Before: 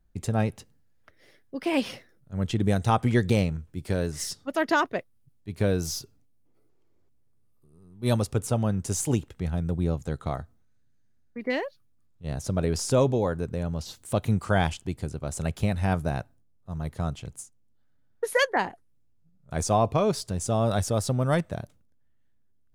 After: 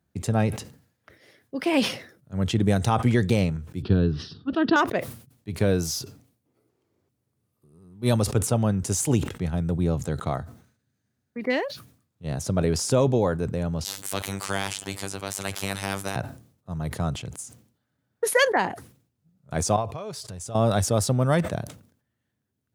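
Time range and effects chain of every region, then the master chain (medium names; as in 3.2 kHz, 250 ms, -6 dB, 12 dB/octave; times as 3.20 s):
3.82–4.76 s: low-pass 4 kHz 24 dB/octave + resonant low shelf 700 Hz +6.5 dB, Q 3 + static phaser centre 2.1 kHz, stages 6
13.84–16.16 s: bass shelf 160 Hz -7 dB + robot voice 97.9 Hz + spectrum-flattening compressor 2:1
19.76–20.55 s: peaking EQ 250 Hz -7.5 dB 1.3 oct + compression 4:1, threshold -37 dBFS
whole clip: high-pass 85 Hz 24 dB/octave; loudness maximiser +11.5 dB; decay stretcher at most 110 dB/s; trim -8.5 dB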